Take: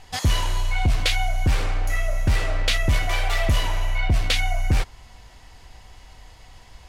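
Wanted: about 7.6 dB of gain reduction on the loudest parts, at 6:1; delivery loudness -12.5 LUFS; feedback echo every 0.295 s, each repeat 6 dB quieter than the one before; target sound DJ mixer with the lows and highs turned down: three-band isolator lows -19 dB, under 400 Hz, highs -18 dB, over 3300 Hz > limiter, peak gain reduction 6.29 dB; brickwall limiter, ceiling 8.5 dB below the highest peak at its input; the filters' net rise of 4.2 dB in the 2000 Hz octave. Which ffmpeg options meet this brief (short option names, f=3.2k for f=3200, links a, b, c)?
-filter_complex "[0:a]equalizer=f=2k:t=o:g=6,acompressor=threshold=-23dB:ratio=6,alimiter=limit=-22.5dB:level=0:latency=1,acrossover=split=400 3300:gain=0.112 1 0.126[a][b][c];[a][b][c]amix=inputs=3:normalize=0,aecho=1:1:295|590|885|1180|1475|1770:0.501|0.251|0.125|0.0626|0.0313|0.0157,volume=25.5dB,alimiter=limit=-4dB:level=0:latency=1"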